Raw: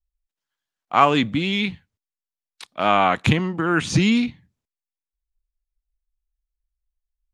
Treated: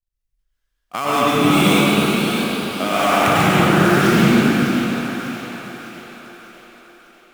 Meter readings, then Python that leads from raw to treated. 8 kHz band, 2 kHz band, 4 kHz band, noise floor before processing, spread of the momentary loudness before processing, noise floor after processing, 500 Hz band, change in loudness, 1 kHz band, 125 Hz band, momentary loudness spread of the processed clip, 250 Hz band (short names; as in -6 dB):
+9.5 dB, +6.5 dB, +6.0 dB, under -85 dBFS, 7 LU, -74 dBFS, +7.0 dB, +4.0 dB, +3.5 dB, +5.5 dB, 17 LU, +7.0 dB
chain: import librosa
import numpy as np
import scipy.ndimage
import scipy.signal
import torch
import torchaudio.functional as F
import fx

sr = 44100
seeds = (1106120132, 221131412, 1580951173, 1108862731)

p1 = fx.dead_time(x, sr, dead_ms=0.068)
p2 = fx.peak_eq(p1, sr, hz=870.0, db=-8.0, octaves=0.5)
p3 = fx.hum_notches(p2, sr, base_hz=50, count=3)
p4 = fx.level_steps(p3, sr, step_db=13)
p5 = p4 + fx.echo_split(p4, sr, split_hz=390.0, low_ms=211, high_ms=600, feedback_pct=52, wet_db=-8.0, dry=0)
p6 = fx.echo_pitch(p5, sr, ms=499, semitones=2, count=3, db_per_echo=-6.0)
p7 = fx.rev_plate(p6, sr, seeds[0], rt60_s=3.2, hf_ratio=0.6, predelay_ms=85, drr_db=-9.0)
y = p7 * librosa.db_to_amplitude(2.5)